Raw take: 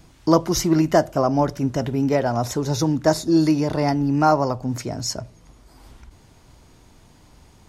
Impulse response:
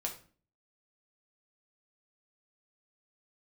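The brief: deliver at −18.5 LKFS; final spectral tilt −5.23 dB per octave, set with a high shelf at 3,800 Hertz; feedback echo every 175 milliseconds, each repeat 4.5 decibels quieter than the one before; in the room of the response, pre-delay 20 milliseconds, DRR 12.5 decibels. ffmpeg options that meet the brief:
-filter_complex "[0:a]highshelf=frequency=3800:gain=5,aecho=1:1:175|350|525|700|875|1050|1225|1400|1575:0.596|0.357|0.214|0.129|0.0772|0.0463|0.0278|0.0167|0.01,asplit=2[link_01][link_02];[1:a]atrim=start_sample=2205,adelay=20[link_03];[link_02][link_03]afir=irnorm=-1:irlink=0,volume=-13.5dB[link_04];[link_01][link_04]amix=inputs=2:normalize=0"

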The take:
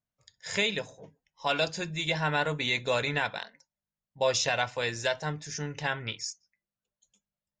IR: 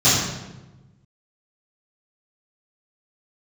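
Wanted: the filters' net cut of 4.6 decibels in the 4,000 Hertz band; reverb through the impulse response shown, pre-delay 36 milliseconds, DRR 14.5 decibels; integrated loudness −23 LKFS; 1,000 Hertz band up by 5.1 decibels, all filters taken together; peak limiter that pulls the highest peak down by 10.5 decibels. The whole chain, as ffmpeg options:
-filter_complex "[0:a]equalizer=frequency=1000:width_type=o:gain=7,equalizer=frequency=4000:width_type=o:gain=-6,alimiter=limit=-22.5dB:level=0:latency=1,asplit=2[link_01][link_02];[1:a]atrim=start_sample=2205,adelay=36[link_03];[link_02][link_03]afir=irnorm=-1:irlink=0,volume=-36dB[link_04];[link_01][link_04]amix=inputs=2:normalize=0,volume=11dB"

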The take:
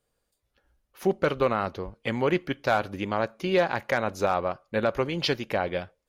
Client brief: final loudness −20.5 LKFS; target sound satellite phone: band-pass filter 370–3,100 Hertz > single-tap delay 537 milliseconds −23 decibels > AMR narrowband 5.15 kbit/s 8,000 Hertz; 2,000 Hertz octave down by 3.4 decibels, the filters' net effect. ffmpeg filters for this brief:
ffmpeg -i in.wav -af "highpass=370,lowpass=3100,equalizer=frequency=2000:width_type=o:gain=-4,aecho=1:1:537:0.0708,volume=10.5dB" -ar 8000 -c:a libopencore_amrnb -b:a 5150 out.amr

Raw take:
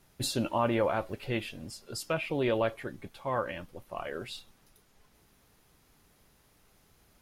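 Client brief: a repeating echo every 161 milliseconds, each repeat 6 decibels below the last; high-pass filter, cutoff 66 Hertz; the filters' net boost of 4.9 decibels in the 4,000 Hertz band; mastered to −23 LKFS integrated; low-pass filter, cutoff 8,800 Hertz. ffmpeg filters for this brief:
ffmpeg -i in.wav -af "highpass=66,lowpass=8800,equalizer=frequency=4000:width_type=o:gain=6,aecho=1:1:161|322|483|644|805|966:0.501|0.251|0.125|0.0626|0.0313|0.0157,volume=8dB" out.wav

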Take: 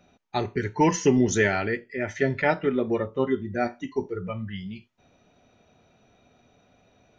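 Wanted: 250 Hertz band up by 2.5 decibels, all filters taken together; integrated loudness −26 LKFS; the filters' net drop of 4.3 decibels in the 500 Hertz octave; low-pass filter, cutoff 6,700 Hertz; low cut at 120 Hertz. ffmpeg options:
ffmpeg -i in.wav -af "highpass=120,lowpass=6700,equalizer=frequency=250:width_type=o:gain=5.5,equalizer=frequency=500:width_type=o:gain=-8" out.wav

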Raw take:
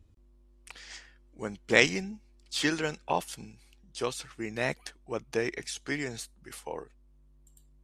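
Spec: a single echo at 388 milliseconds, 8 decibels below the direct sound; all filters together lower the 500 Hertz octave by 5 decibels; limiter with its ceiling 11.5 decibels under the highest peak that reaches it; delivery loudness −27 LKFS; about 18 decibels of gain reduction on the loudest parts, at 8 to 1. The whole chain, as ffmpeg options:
ffmpeg -i in.wav -af "equalizer=frequency=500:width_type=o:gain=-6,acompressor=threshold=-35dB:ratio=8,alimiter=level_in=8.5dB:limit=-24dB:level=0:latency=1,volume=-8.5dB,aecho=1:1:388:0.398,volume=18.5dB" out.wav

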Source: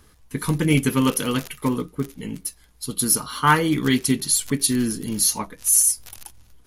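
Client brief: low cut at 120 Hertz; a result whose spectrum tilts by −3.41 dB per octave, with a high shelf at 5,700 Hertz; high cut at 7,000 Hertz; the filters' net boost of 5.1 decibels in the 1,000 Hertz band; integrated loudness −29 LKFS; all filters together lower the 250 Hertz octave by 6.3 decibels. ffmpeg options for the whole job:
ffmpeg -i in.wav -af "highpass=120,lowpass=7000,equalizer=frequency=250:width_type=o:gain=-7.5,equalizer=frequency=1000:width_type=o:gain=6,highshelf=frequency=5700:gain=9,volume=-8dB" out.wav

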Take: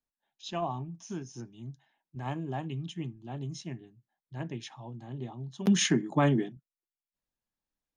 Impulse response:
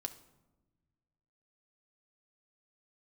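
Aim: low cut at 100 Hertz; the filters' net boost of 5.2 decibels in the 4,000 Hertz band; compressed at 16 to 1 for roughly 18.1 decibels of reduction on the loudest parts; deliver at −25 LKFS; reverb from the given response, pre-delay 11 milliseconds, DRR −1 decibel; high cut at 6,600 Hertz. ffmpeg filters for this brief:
-filter_complex "[0:a]highpass=100,lowpass=6600,equalizer=frequency=4000:width_type=o:gain=7.5,acompressor=threshold=-38dB:ratio=16,asplit=2[link_01][link_02];[1:a]atrim=start_sample=2205,adelay=11[link_03];[link_02][link_03]afir=irnorm=-1:irlink=0,volume=2.5dB[link_04];[link_01][link_04]amix=inputs=2:normalize=0,volume=16dB"

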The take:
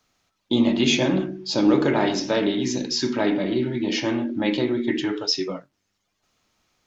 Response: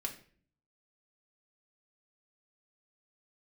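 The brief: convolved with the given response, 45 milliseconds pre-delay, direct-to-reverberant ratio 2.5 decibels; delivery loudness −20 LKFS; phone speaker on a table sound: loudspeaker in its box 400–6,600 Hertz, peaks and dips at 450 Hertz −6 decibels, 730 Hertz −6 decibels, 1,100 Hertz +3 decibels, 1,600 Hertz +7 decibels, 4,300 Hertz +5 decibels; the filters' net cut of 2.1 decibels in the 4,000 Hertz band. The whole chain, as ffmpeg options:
-filter_complex "[0:a]equalizer=frequency=4000:width_type=o:gain=-5,asplit=2[link_01][link_02];[1:a]atrim=start_sample=2205,adelay=45[link_03];[link_02][link_03]afir=irnorm=-1:irlink=0,volume=-2.5dB[link_04];[link_01][link_04]amix=inputs=2:normalize=0,highpass=frequency=400:width=0.5412,highpass=frequency=400:width=1.3066,equalizer=frequency=450:width_type=q:width=4:gain=-6,equalizer=frequency=730:width_type=q:width=4:gain=-6,equalizer=frequency=1100:width_type=q:width=4:gain=3,equalizer=frequency=1600:width_type=q:width=4:gain=7,equalizer=frequency=4300:width_type=q:width=4:gain=5,lowpass=frequency=6600:width=0.5412,lowpass=frequency=6600:width=1.3066,volume=5.5dB"

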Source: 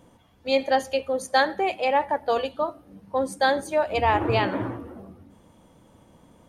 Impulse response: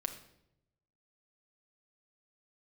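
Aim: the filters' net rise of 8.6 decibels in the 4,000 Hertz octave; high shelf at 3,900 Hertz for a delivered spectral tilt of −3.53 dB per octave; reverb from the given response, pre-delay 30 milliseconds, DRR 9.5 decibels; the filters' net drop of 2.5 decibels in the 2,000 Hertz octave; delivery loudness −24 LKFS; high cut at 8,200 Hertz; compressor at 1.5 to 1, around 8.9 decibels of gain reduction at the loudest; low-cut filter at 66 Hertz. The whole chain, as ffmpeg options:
-filter_complex "[0:a]highpass=66,lowpass=8200,equalizer=frequency=2000:width_type=o:gain=-7,highshelf=frequency=3900:gain=7,equalizer=frequency=4000:width_type=o:gain=8.5,acompressor=threshold=-40dB:ratio=1.5,asplit=2[link_01][link_02];[1:a]atrim=start_sample=2205,adelay=30[link_03];[link_02][link_03]afir=irnorm=-1:irlink=0,volume=-10dB[link_04];[link_01][link_04]amix=inputs=2:normalize=0,volume=7dB"

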